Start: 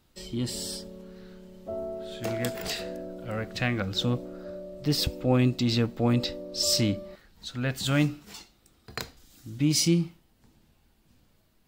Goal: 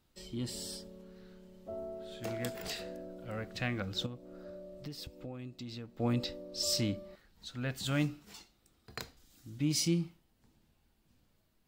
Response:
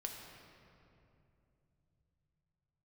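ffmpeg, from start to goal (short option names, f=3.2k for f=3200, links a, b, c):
-filter_complex "[0:a]asettb=1/sr,asplit=3[a][b][c];[a]atrim=end=4.064[d];[b]atrim=start=4.06:end=6,asetpts=PTS-STARTPTS,afade=t=in:d=0.004:c=qsin,afade=t=out:st=1.936:d=0.004:c=qsin,acompressor=threshold=-34dB:ratio=8[e];[c]atrim=start=5.996[f];[d][e]acrossfade=d=0.004:c1=hsin:c2=qsin[g];[g][f]acrossfade=d=0.004:c1=qsin:c2=hsin,volume=-7.5dB"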